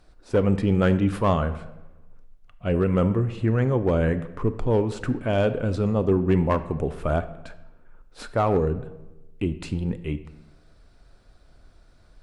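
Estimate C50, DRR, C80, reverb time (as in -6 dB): 13.5 dB, 10.5 dB, 15.5 dB, 1.0 s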